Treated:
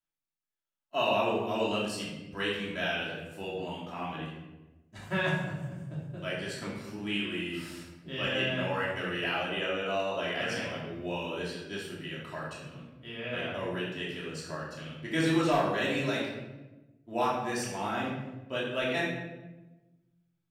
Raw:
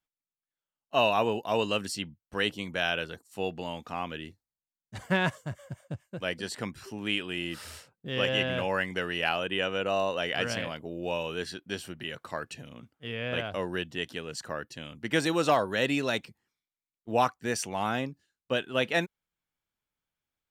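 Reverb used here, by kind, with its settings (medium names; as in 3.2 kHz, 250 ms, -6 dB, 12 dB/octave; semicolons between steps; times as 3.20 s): simulated room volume 530 m³, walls mixed, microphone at 2.9 m; trim -9.5 dB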